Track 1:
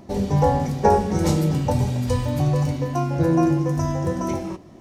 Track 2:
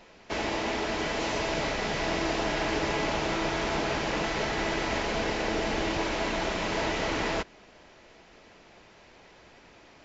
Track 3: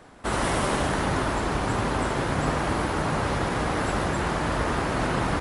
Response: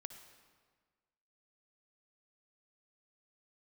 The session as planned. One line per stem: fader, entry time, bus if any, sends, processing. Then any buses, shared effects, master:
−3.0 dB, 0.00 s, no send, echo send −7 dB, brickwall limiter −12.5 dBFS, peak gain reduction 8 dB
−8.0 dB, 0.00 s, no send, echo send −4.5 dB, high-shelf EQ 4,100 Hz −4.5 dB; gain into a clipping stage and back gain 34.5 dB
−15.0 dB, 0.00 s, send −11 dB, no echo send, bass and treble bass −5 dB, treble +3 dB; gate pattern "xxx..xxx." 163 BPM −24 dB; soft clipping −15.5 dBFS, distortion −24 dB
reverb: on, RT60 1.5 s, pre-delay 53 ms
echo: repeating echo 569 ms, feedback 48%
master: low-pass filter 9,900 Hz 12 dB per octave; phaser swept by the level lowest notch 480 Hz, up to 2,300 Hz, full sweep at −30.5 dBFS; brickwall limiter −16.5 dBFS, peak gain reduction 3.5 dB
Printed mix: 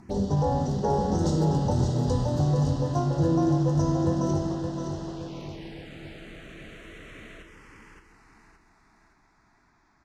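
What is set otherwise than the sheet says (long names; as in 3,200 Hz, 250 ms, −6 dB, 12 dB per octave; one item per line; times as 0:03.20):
stem 3: muted
reverb: off
master: missing brickwall limiter −16.5 dBFS, peak gain reduction 3.5 dB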